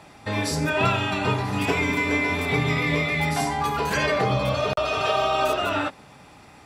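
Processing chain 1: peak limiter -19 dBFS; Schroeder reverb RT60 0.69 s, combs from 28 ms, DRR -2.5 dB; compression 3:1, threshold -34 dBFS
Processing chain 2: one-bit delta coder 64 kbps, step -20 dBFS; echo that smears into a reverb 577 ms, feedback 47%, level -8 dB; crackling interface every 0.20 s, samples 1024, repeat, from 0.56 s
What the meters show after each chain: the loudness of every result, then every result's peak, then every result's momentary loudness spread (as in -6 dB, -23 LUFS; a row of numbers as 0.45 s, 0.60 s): -33.5 LUFS, -21.5 LUFS; -21.5 dBFS, -8.0 dBFS; 2 LU, 3 LU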